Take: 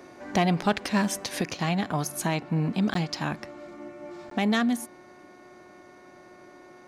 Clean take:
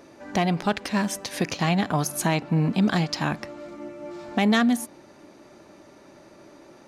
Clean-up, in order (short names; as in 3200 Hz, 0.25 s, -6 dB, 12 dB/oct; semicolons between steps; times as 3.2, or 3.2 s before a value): de-hum 362.8 Hz, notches 6; interpolate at 2.94/4.3, 13 ms; gain 0 dB, from 1.41 s +4 dB